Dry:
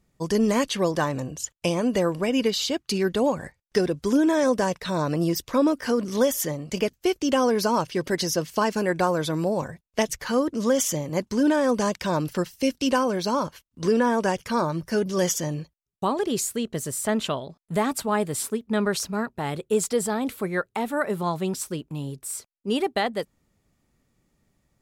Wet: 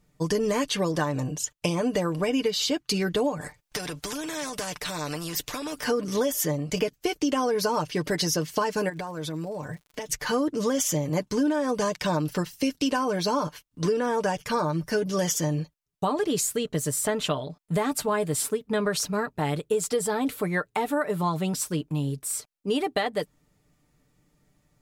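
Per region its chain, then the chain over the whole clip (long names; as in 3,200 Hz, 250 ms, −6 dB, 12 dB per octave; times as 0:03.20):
0:03.41–0:05.84: downward compressor 4 to 1, threshold −22 dBFS + every bin compressed towards the loudest bin 2 to 1
0:08.88–0:10.08: downward compressor 10 to 1, threshold −32 dBFS + surface crackle 53 per second −45 dBFS
whole clip: comb filter 6.7 ms, depth 57%; downward compressor, threshold −23 dBFS; level +1.5 dB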